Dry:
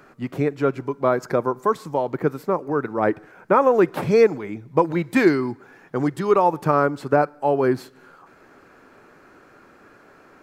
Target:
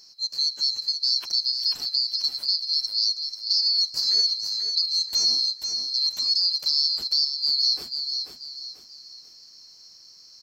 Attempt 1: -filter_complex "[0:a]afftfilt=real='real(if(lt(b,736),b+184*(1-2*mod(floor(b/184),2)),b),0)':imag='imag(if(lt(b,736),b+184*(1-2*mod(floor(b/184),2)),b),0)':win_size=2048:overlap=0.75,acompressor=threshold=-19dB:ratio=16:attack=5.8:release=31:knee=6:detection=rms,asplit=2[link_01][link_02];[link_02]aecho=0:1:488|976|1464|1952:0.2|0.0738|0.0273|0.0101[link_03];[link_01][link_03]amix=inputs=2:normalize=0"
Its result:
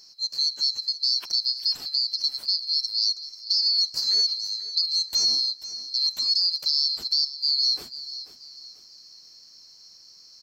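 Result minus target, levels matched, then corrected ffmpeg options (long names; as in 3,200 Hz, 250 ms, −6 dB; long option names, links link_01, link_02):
echo-to-direct −7.5 dB
-filter_complex "[0:a]afftfilt=real='real(if(lt(b,736),b+184*(1-2*mod(floor(b/184),2)),b),0)':imag='imag(if(lt(b,736),b+184*(1-2*mod(floor(b/184),2)),b),0)':win_size=2048:overlap=0.75,acompressor=threshold=-19dB:ratio=16:attack=5.8:release=31:knee=6:detection=rms,asplit=2[link_01][link_02];[link_02]aecho=0:1:488|976|1464|1952:0.473|0.175|0.0648|0.024[link_03];[link_01][link_03]amix=inputs=2:normalize=0"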